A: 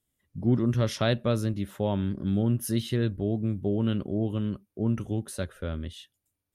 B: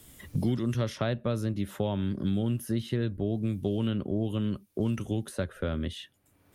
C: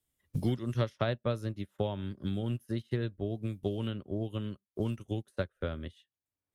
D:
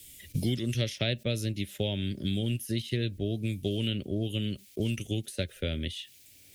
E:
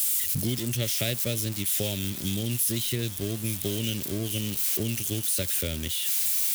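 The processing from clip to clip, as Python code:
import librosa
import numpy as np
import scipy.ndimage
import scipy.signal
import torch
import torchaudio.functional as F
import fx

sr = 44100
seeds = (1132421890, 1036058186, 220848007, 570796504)

y1 = fx.band_squash(x, sr, depth_pct=100)
y1 = y1 * librosa.db_to_amplitude(-3.0)
y2 = fx.peak_eq(y1, sr, hz=210.0, db=-4.5, octaves=1.2)
y2 = fx.upward_expand(y2, sr, threshold_db=-48.0, expansion=2.5)
y2 = y2 * librosa.db_to_amplitude(2.5)
y3 = fx.curve_eq(y2, sr, hz=(290.0, 620.0, 1100.0, 2300.0), db=(0, -4, -20, 9))
y3 = fx.env_flatten(y3, sr, amount_pct=50)
y4 = y3 + 0.5 * 10.0 ** (-22.0 / 20.0) * np.diff(np.sign(y3), prepend=np.sign(y3[:1]))
y4 = fx.echo_wet_highpass(y4, sr, ms=855, feedback_pct=60, hz=2700.0, wet_db=-11)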